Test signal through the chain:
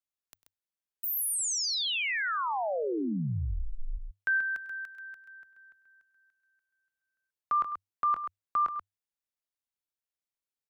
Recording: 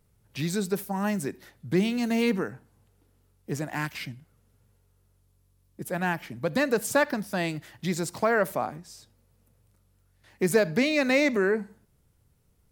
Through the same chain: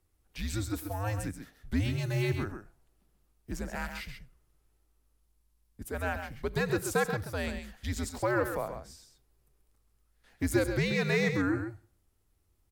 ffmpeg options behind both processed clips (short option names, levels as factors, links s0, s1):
-af "afreqshift=-100,aecho=1:1:99|133:0.133|0.398,volume=0.531"